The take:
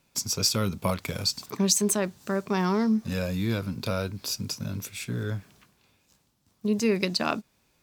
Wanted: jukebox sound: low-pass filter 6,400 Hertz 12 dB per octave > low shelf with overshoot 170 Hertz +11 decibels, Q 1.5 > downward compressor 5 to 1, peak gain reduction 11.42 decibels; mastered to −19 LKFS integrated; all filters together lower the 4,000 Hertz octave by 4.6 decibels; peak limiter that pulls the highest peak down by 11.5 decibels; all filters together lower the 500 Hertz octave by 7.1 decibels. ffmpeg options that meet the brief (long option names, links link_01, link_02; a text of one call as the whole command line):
ffmpeg -i in.wav -af "equalizer=frequency=500:width_type=o:gain=-7.5,equalizer=frequency=4000:width_type=o:gain=-4.5,alimiter=limit=-21dB:level=0:latency=1,lowpass=6400,lowshelf=frequency=170:width_type=q:width=1.5:gain=11,acompressor=threshold=-28dB:ratio=5,volume=14dB" out.wav